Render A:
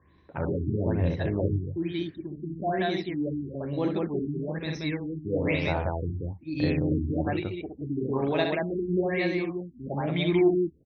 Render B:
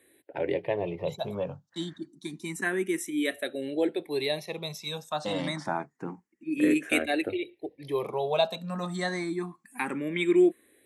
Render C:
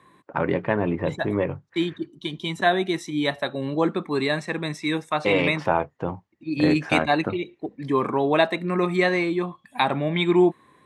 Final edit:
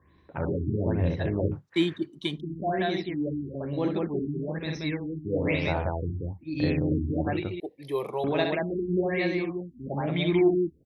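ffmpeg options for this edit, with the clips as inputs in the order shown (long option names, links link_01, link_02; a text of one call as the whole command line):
ffmpeg -i take0.wav -i take1.wav -i take2.wav -filter_complex "[0:a]asplit=3[link_01][link_02][link_03];[link_01]atrim=end=1.57[link_04];[2:a]atrim=start=1.51:end=2.41[link_05];[link_02]atrim=start=2.35:end=7.602[link_06];[1:a]atrim=start=7.598:end=8.242[link_07];[link_03]atrim=start=8.238[link_08];[link_04][link_05]acrossfade=duration=0.06:curve1=tri:curve2=tri[link_09];[link_09][link_06]acrossfade=duration=0.06:curve1=tri:curve2=tri[link_10];[link_10][link_07]acrossfade=duration=0.004:curve1=hsin:curve2=hsin[link_11];[link_11][link_08]acrossfade=duration=0.004:curve1=hsin:curve2=hsin" out.wav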